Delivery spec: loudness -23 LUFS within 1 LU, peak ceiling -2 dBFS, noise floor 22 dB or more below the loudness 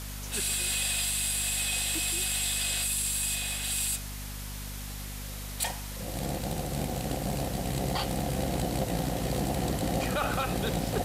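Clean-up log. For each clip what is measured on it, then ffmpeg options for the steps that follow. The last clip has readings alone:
hum 50 Hz; harmonics up to 250 Hz; hum level -37 dBFS; noise floor -38 dBFS; noise floor target -52 dBFS; loudness -29.5 LUFS; peak -17.0 dBFS; loudness target -23.0 LUFS
-> -af "bandreject=f=50:t=h:w=6,bandreject=f=100:t=h:w=6,bandreject=f=150:t=h:w=6,bandreject=f=200:t=h:w=6,bandreject=f=250:t=h:w=6"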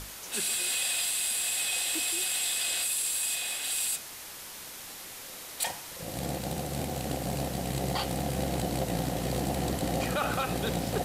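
hum none; noise floor -44 dBFS; noise floor target -52 dBFS
-> -af "afftdn=nr=8:nf=-44"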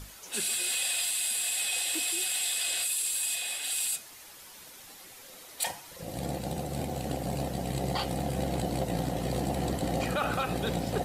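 noise floor -50 dBFS; noise floor target -52 dBFS
-> -af "afftdn=nr=6:nf=-50"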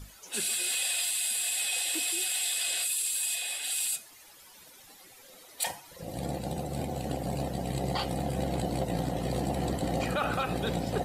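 noise floor -54 dBFS; loudness -30.0 LUFS; peak -17.0 dBFS; loudness target -23.0 LUFS
-> -af "volume=7dB"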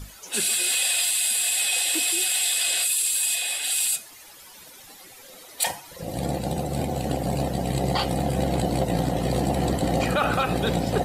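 loudness -23.0 LUFS; peak -10.0 dBFS; noise floor -47 dBFS

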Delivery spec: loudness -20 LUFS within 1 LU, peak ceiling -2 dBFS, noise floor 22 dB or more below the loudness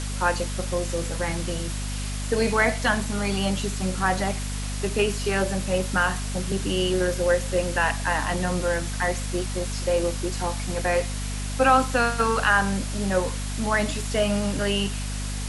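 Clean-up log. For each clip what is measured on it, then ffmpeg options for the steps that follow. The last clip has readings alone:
hum 50 Hz; harmonics up to 250 Hz; hum level -28 dBFS; noise floor -30 dBFS; noise floor target -47 dBFS; loudness -25.0 LUFS; peak -6.0 dBFS; loudness target -20.0 LUFS
-> -af "bandreject=f=50:t=h:w=4,bandreject=f=100:t=h:w=4,bandreject=f=150:t=h:w=4,bandreject=f=200:t=h:w=4,bandreject=f=250:t=h:w=4"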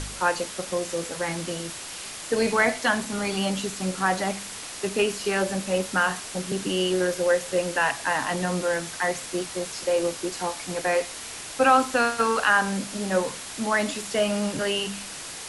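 hum none; noise floor -38 dBFS; noise floor target -48 dBFS
-> -af "afftdn=nr=10:nf=-38"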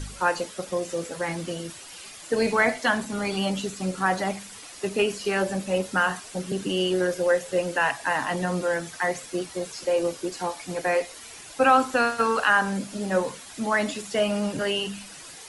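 noise floor -43 dBFS; noise floor target -48 dBFS
-> -af "afftdn=nr=6:nf=-43"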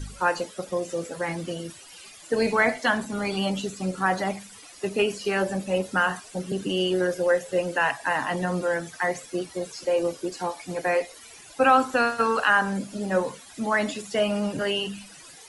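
noise floor -47 dBFS; noise floor target -48 dBFS
-> -af "afftdn=nr=6:nf=-47"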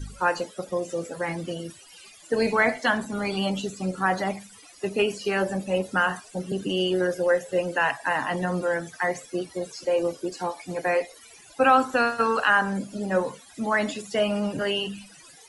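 noise floor -50 dBFS; loudness -26.0 LUFS; peak -6.5 dBFS; loudness target -20.0 LUFS
-> -af "volume=6dB,alimiter=limit=-2dB:level=0:latency=1"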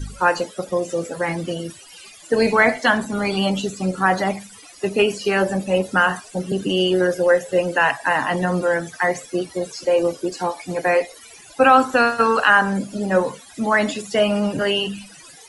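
loudness -20.0 LUFS; peak -2.0 dBFS; noise floor -44 dBFS

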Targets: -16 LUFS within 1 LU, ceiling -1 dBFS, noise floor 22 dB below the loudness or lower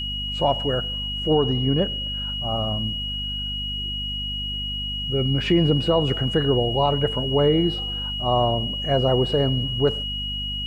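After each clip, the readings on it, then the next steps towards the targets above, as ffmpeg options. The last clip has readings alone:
hum 50 Hz; harmonics up to 250 Hz; hum level -30 dBFS; steady tone 2900 Hz; tone level -27 dBFS; loudness -22.5 LUFS; peak -8.0 dBFS; loudness target -16.0 LUFS
-> -af "bandreject=f=50:t=h:w=4,bandreject=f=100:t=h:w=4,bandreject=f=150:t=h:w=4,bandreject=f=200:t=h:w=4,bandreject=f=250:t=h:w=4"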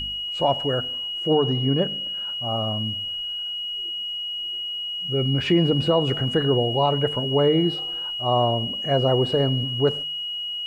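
hum none; steady tone 2900 Hz; tone level -27 dBFS
-> -af "bandreject=f=2.9k:w=30"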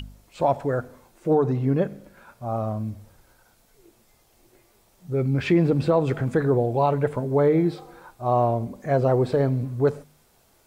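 steady tone none; loudness -23.5 LUFS; peak -10.0 dBFS; loudness target -16.0 LUFS
-> -af "volume=7.5dB"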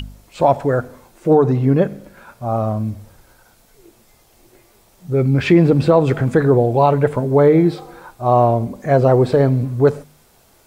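loudness -16.0 LUFS; peak -2.5 dBFS; noise floor -53 dBFS

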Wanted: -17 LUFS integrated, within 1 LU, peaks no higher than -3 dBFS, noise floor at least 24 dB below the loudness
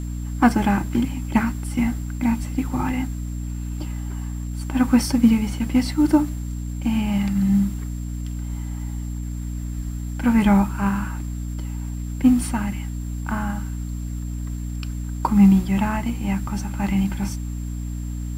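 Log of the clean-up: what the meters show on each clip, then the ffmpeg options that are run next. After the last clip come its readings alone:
hum 60 Hz; harmonics up to 300 Hz; hum level -26 dBFS; steady tone 7400 Hz; tone level -48 dBFS; loudness -23.0 LUFS; peak -4.0 dBFS; loudness target -17.0 LUFS
-> -af "bandreject=f=60:t=h:w=6,bandreject=f=120:t=h:w=6,bandreject=f=180:t=h:w=6,bandreject=f=240:t=h:w=6,bandreject=f=300:t=h:w=6"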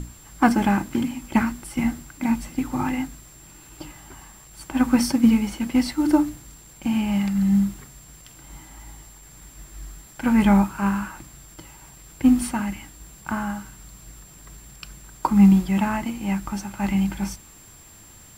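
hum none; steady tone 7400 Hz; tone level -48 dBFS
-> -af "bandreject=f=7.4k:w=30"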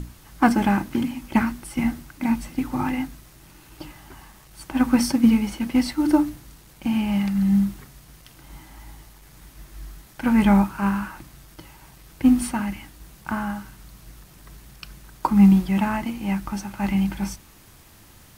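steady tone none; loudness -22.0 LUFS; peak -4.5 dBFS; loudness target -17.0 LUFS
-> -af "volume=5dB,alimiter=limit=-3dB:level=0:latency=1"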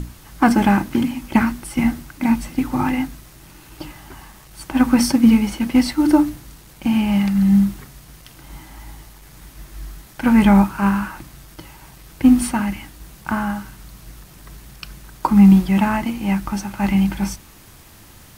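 loudness -17.5 LUFS; peak -3.0 dBFS; noise floor -45 dBFS

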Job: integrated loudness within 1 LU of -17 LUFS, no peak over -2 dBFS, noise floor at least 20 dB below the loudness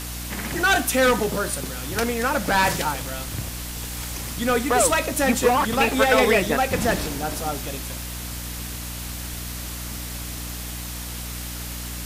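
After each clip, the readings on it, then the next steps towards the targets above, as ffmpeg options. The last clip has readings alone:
hum 60 Hz; harmonics up to 300 Hz; hum level -32 dBFS; noise floor -33 dBFS; noise floor target -44 dBFS; loudness -23.5 LUFS; peak -5.5 dBFS; loudness target -17.0 LUFS
-> -af "bandreject=f=60:t=h:w=4,bandreject=f=120:t=h:w=4,bandreject=f=180:t=h:w=4,bandreject=f=240:t=h:w=4,bandreject=f=300:t=h:w=4"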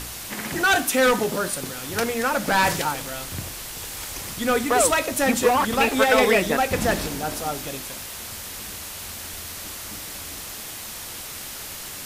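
hum none; noise floor -36 dBFS; noise floor target -44 dBFS
-> -af "afftdn=nr=8:nf=-36"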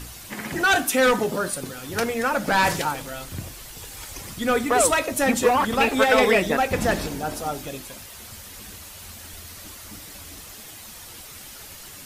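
noise floor -42 dBFS; loudness -22.0 LUFS; peak -6.0 dBFS; loudness target -17.0 LUFS
-> -af "volume=5dB,alimiter=limit=-2dB:level=0:latency=1"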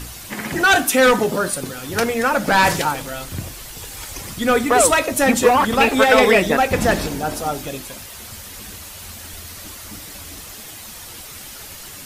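loudness -17.0 LUFS; peak -2.0 dBFS; noise floor -37 dBFS

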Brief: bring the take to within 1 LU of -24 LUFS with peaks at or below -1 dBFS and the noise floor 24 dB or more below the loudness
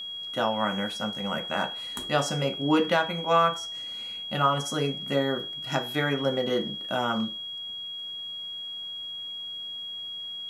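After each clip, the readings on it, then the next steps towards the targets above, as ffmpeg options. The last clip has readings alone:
steady tone 3300 Hz; tone level -34 dBFS; loudness -28.5 LUFS; peak -9.0 dBFS; loudness target -24.0 LUFS
-> -af "bandreject=f=3.3k:w=30"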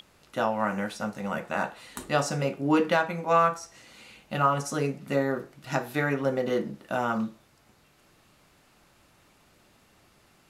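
steady tone none; loudness -28.0 LUFS; peak -10.0 dBFS; loudness target -24.0 LUFS
-> -af "volume=4dB"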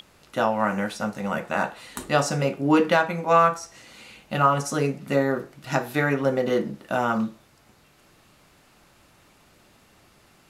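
loudness -24.0 LUFS; peak -6.0 dBFS; noise floor -58 dBFS

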